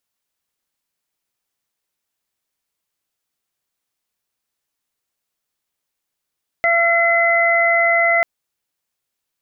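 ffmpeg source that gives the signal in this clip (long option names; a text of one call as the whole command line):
ffmpeg -f lavfi -i "aevalsrc='0.15*sin(2*PI*679*t)+0.0668*sin(2*PI*1358*t)+0.188*sin(2*PI*2037*t)':duration=1.59:sample_rate=44100" out.wav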